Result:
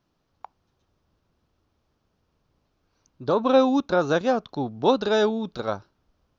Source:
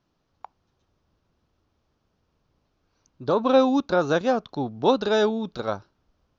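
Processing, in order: 3.37–3.99 s: band-stop 4.6 kHz, Q 13

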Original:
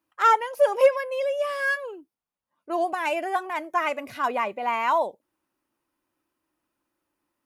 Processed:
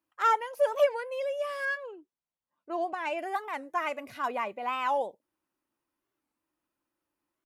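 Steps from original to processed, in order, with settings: 1.65–3.19 s: distance through air 68 m; warped record 45 rpm, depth 250 cents; trim -6 dB

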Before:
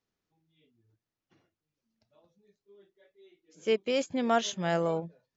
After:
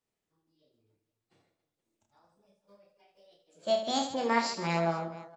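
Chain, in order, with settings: formant shift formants +6 st; reverse bouncing-ball echo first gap 30 ms, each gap 1.6×, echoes 5; trim -3.5 dB

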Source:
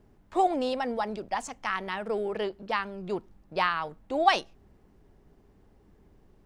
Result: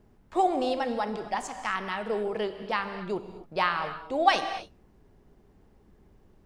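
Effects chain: gated-style reverb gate 290 ms flat, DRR 8 dB

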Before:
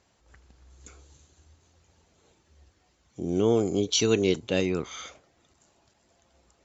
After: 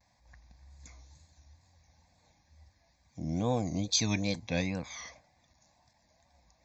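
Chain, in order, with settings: wow and flutter 140 cents; static phaser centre 2 kHz, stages 8

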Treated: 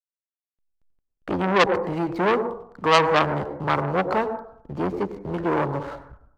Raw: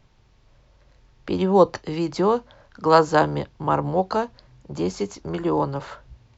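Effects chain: low-pass 2.4 kHz 12 dB/octave; hysteresis with a dead band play -40.5 dBFS; on a send at -11 dB: reverberation RT60 0.65 s, pre-delay 87 ms; on the sum: transformer saturation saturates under 2.4 kHz; trim +2.5 dB

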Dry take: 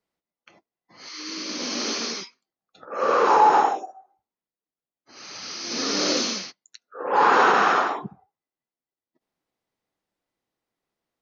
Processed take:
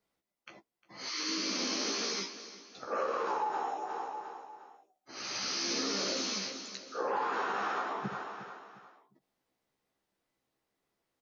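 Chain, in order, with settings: doubling 15 ms -4 dB; feedback delay 355 ms, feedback 37%, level -20 dB; compression 16:1, threshold -30 dBFS, peak gain reduction 21.5 dB

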